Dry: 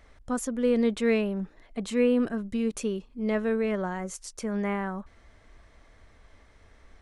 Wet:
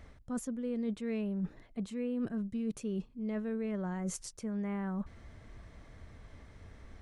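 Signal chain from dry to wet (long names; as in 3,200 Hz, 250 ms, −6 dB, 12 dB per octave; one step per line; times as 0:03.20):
parametric band 130 Hz +11.5 dB 2.3 octaves
reversed playback
downward compressor 6 to 1, threshold −33 dBFS, peak gain reduction 17.5 dB
reversed playback
level −1 dB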